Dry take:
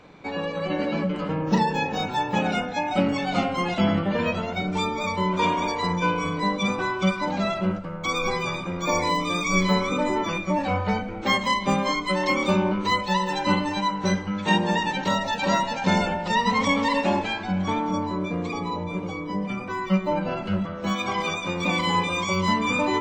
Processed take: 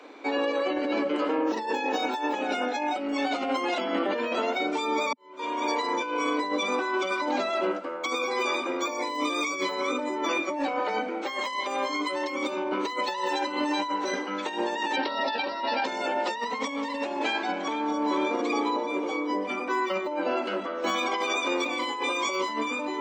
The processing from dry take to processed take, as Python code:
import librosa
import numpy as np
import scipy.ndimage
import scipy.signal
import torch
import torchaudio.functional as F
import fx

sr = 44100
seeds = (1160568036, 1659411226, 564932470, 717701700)

y = fx.highpass(x, sr, hz=370.0, slope=12, at=(11.22, 11.89))
y = fx.resample_bad(y, sr, factor=4, down='none', up='filtered', at=(14.96, 15.85))
y = fx.echo_throw(y, sr, start_s=17.22, length_s=0.74, ms=450, feedback_pct=45, wet_db=-8.5)
y = fx.edit(y, sr, fx.fade_in_span(start_s=5.13, length_s=0.7, curve='qua'), tone=tone)
y = scipy.signal.sosfilt(scipy.signal.butter(12, 250.0, 'highpass', fs=sr, output='sos'), y)
y = fx.over_compress(y, sr, threshold_db=-29.0, ratio=-1.0)
y = fx.low_shelf(y, sr, hz=320.0, db=3.5)